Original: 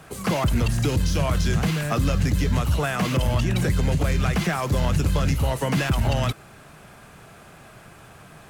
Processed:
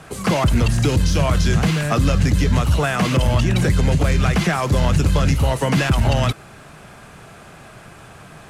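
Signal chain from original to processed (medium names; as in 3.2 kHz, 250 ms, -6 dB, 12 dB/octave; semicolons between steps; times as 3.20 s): low-pass 11 kHz 12 dB/octave; trim +5 dB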